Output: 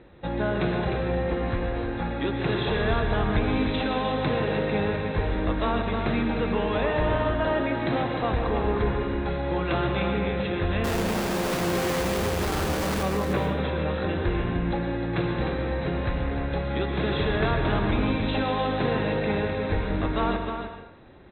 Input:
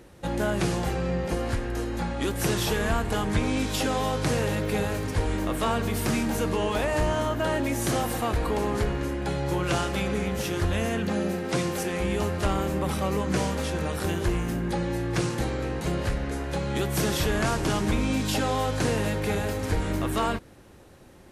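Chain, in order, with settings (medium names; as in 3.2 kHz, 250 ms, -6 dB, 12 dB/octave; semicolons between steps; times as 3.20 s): Chebyshev low-pass 4 kHz, order 10; band-stop 3 kHz, Q 10; 10.84–13.03 s: Schmitt trigger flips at -39 dBFS; on a send: delay 305 ms -7 dB; on the sum: plate-style reverb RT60 0.62 s, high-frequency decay 0.8×, pre-delay 105 ms, DRR 5.5 dB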